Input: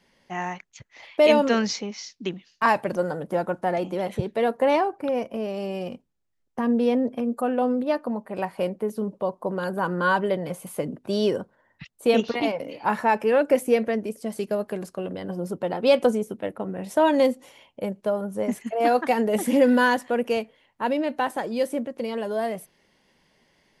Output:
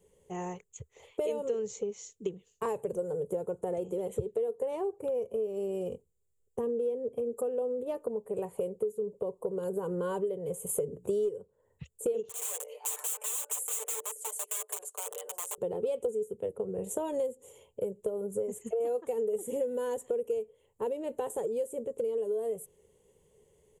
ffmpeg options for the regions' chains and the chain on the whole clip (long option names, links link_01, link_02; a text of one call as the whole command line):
ffmpeg -i in.wav -filter_complex "[0:a]asettb=1/sr,asplit=3[link_01][link_02][link_03];[link_01]atrim=end=10.694[link_04];[link_02]atrim=start=10.69:end=11.29,asetpts=PTS-STARTPTS,afade=type=in:duration=0.004:curve=qsin,afade=type=out:start_time=0.596:duration=0.004:curve=qsin,acontrast=72,bandreject=frequency=60:width_type=h:width=6,bandreject=frequency=120:width_type=h:width=6,bandreject=frequency=180:width_type=h:width=6,bandreject=frequency=240:width_type=h:width=6,bandreject=frequency=300:width_type=h:width=6,asoftclip=type=hard:threshold=-10.5dB[link_05];[link_03]atrim=start=11.286[link_06];[link_04][link_05]acrossfade=duration=0.004:curve1=hsin:curve2=qsin[link_07];[link_07][link_06]acrossfade=duration=0.004:curve1=qsin:curve2=hsin,asettb=1/sr,asplit=3[link_08][link_09][link_10];[link_08]atrim=end=12.294[link_11];[link_09]atrim=start=12.29:end=15.58,asetpts=PTS-STARTPTS,afade=type=in:duration=0.004:curve=qsin,afade=type=out:start_time=3.286:duration=0.004:curve=qsin,aeval=exprs='(mod(16.8*val(0)+1,2)-1)/16.8':channel_layout=same,highpass=frequency=700:width=0.5412,highpass=frequency=700:width=1.3066,aecho=1:1:6.7:0.71,atrim=end_sample=145089[link_12];[link_10]atrim=start=15.576[link_13];[link_11][link_12]acrossfade=duration=0.004:curve1=hsin:curve2=qsin[link_14];[link_14][link_13]acrossfade=duration=0.004:curve1=qsin:curve2=hsin,firequalizer=gain_entry='entry(130,0);entry(280,-14);entry(430,12);entry(630,-9);entry(1100,-11);entry(1600,-20);entry(3100,-11);entry(5000,-23);entry(7100,8);entry(11000,2)':delay=0.05:min_phase=1,acompressor=threshold=-30dB:ratio=6,equalizer=frequency=75:width_type=o:width=0.67:gain=8" out.wav